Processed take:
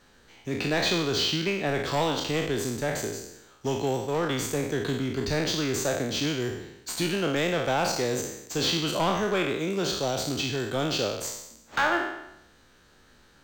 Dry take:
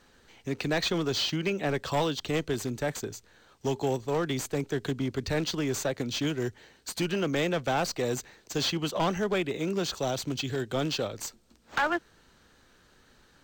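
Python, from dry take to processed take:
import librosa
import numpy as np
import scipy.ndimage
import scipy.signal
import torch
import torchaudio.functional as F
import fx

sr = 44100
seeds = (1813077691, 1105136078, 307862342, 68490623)

y = fx.spec_trails(x, sr, decay_s=0.84)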